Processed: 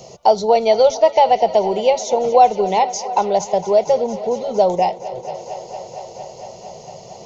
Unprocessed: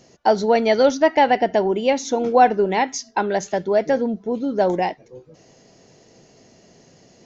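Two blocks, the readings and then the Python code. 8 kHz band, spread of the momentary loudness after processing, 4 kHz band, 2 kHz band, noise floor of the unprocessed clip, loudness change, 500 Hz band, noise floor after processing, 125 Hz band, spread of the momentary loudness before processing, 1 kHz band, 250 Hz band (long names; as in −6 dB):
can't be measured, 20 LU, +2.5 dB, −7.0 dB, −53 dBFS, +3.0 dB, +3.5 dB, −39 dBFS, −0.5 dB, 8 LU, +4.0 dB, −5.5 dB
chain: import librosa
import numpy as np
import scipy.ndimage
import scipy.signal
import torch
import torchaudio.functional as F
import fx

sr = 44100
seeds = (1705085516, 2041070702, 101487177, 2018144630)

y = fx.fixed_phaser(x, sr, hz=680.0, stages=4)
y = fx.echo_thinned(y, sr, ms=229, feedback_pct=82, hz=190.0, wet_db=-18.0)
y = fx.band_squash(y, sr, depth_pct=40)
y = y * librosa.db_to_amplitude(5.0)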